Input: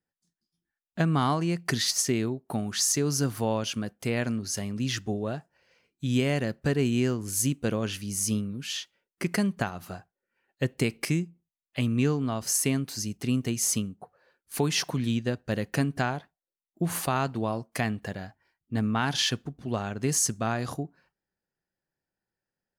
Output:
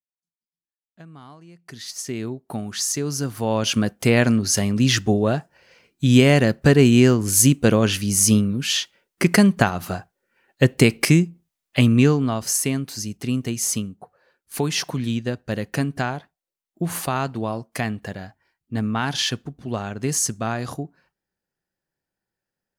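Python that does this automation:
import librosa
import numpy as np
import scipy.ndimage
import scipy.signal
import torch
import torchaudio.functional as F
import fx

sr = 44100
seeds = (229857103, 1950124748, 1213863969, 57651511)

y = fx.gain(x, sr, db=fx.line((1.54, -19.0), (1.85, -8.5), (2.31, 1.0), (3.34, 1.0), (3.75, 11.5), (11.8, 11.5), (12.67, 3.0)))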